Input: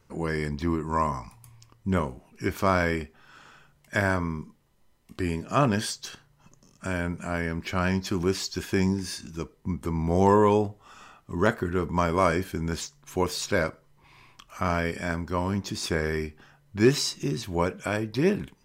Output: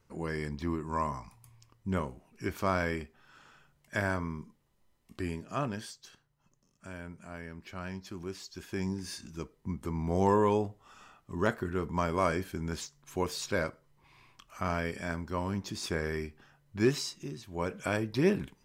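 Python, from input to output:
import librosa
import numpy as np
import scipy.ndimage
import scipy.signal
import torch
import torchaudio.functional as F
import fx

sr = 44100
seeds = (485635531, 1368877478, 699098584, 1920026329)

y = fx.gain(x, sr, db=fx.line((5.22, -6.5), (5.94, -14.5), (8.44, -14.5), (9.15, -6.0), (16.82, -6.0), (17.46, -14.0), (17.77, -3.0)))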